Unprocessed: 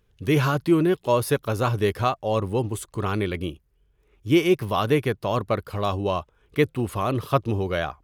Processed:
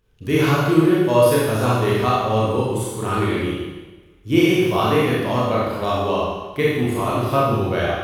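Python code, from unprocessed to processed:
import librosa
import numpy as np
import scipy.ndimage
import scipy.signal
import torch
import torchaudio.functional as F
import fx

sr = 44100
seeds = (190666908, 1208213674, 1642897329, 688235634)

y = fx.rev_schroeder(x, sr, rt60_s=1.2, comb_ms=25, drr_db=-6.5)
y = y * 10.0 ** (-2.0 / 20.0)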